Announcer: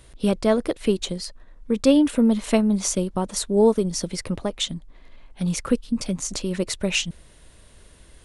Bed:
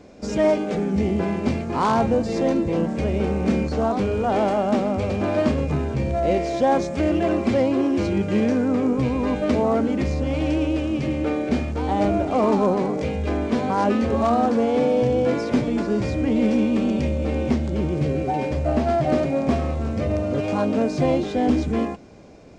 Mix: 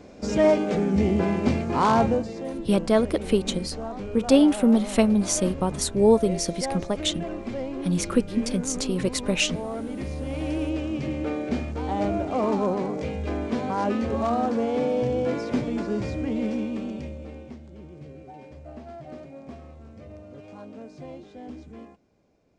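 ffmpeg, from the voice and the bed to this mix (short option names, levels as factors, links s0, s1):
-filter_complex "[0:a]adelay=2450,volume=0.944[s0];[1:a]volume=2.24,afade=t=out:st=2.01:d=0.33:silence=0.251189,afade=t=in:st=9.74:d=0.96:silence=0.446684,afade=t=out:st=15.98:d=1.53:silence=0.16788[s1];[s0][s1]amix=inputs=2:normalize=0"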